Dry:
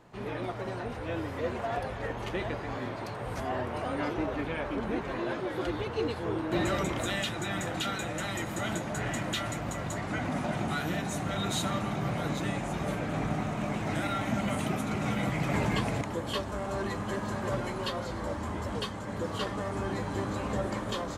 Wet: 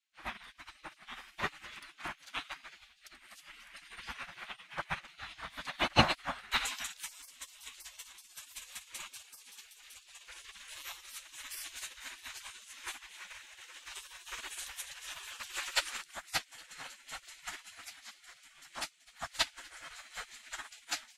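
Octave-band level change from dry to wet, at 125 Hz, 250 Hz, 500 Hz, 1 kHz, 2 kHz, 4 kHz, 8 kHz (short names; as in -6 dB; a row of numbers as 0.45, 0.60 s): -15.5, -16.5, -15.5, -7.5, -3.5, 0.0, -1.0 dB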